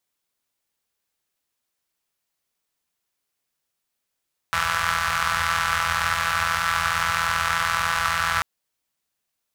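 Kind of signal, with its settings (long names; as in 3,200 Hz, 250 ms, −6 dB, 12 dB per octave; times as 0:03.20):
pulse-train model of a four-cylinder engine, steady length 3.89 s, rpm 5,000, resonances 81/1,300 Hz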